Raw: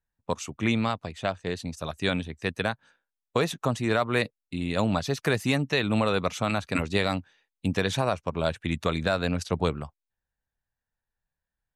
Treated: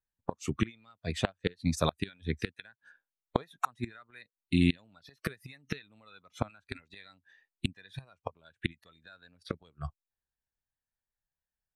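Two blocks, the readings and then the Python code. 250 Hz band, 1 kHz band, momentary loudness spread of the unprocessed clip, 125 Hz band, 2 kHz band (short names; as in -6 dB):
-6.5 dB, -9.0 dB, 9 LU, -6.5 dB, -11.0 dB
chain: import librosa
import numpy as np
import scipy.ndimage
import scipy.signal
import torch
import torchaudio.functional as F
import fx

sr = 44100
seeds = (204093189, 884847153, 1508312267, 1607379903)

y = fx.gate_flip(x, sr, shuts_db=-19.0, range_db=-28)
y = fx.noise_reduce_blind(y, sr, reduce_db=15)
y = F.gain(torch.from_numpy(y), 6.5).numpy()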